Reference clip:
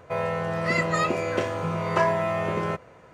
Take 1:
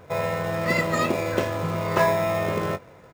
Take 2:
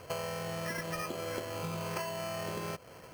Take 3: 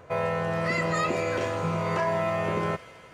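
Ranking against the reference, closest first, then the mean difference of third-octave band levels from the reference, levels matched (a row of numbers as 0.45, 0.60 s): 3, 1, 2; 2.0, 3.5, 8.5 dB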